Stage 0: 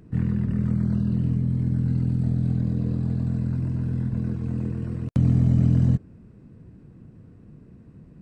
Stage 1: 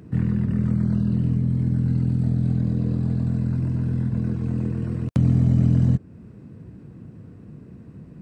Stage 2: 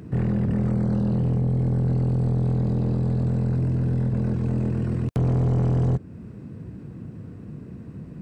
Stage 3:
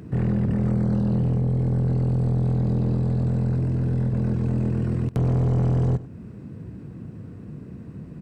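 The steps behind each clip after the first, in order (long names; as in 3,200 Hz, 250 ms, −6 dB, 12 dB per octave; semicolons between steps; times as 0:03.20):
high-pass filter 66 Hz; in parallel at −0.5 dB: downward compressor, threshold −31 dBFS, peak gain reduction 15 dB
soft clipping −22 dBFS, distortion −8 dB; level +4 dB
single-tap delay 97 ms −18 dB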